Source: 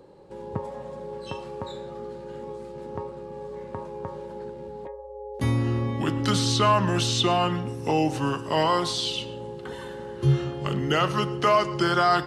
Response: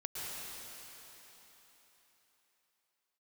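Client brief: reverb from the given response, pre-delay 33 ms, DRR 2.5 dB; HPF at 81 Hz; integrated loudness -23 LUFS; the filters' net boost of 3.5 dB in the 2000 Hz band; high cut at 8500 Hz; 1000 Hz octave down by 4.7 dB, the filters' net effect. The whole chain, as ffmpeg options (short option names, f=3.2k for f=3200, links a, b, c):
-filter_complex "[0:a]highpass=81,lowpass=8.5k,equalizer=f=1k:t=o:g=-8.5,equalizer=f=2k:t=o:g=7.5,asplit=2[a][b];[1:a]atrim=start_sample=2205,adelay=33[c];[b][c]afir=irnorm=-1:irlink=0,volume=-5dB[d];[a][d]amix=inputs=2:normalize=0,volume=1dB"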